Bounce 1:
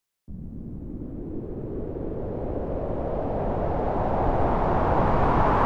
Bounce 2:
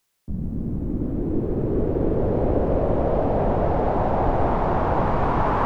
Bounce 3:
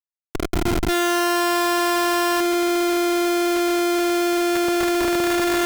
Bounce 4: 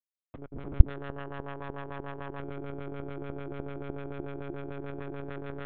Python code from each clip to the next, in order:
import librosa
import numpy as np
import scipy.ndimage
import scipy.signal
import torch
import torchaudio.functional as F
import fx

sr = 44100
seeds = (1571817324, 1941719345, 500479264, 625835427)

y1 = fx.rider(x, sr, range_db=5, speed_s=0.5)
y1 = y1 * librosa.db_to_amplitude(4.5)
y2 = fx.spec_paint(y1, sr, seeds[0], shape='rise', start_s=0.88, length_s=1.52, low_hz=860.0, high_hz=2000.0, level_db=-15.0)
y2 = fx.vocoder(y2, sr, bands=4, carrier='saw', carrier_hz=348.0)
y2 = fx.schmitt(y2, sr, flips_db=-29.0)
y3 = fx.filter_lfo_lowpass(y2, sr, shape='sine', hz=6.8, low_hz=340.0, high_hz=2700.0, q=0.96)
y3 = fx.lpc_monotone(y3, sr, seeds[1], pitch_hz=140.0, order=10)
y3 = y3 * librosa.db_to_amplitude(-18.0)